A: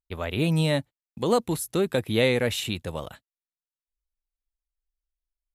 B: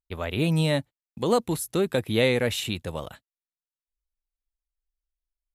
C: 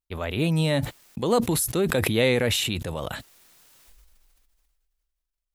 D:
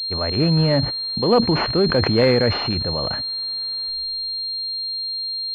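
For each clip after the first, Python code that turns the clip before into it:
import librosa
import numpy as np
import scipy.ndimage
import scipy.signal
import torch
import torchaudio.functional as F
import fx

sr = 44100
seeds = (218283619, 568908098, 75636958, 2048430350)

y1 = x
y2 = fx.sustainer(y1, sr, db_per_s=23.0)
y3 = fx.pwm(y2, sr, carrier_hz=4200.0)
y3 = y3 * librosa.db_to_amplitude(5.5)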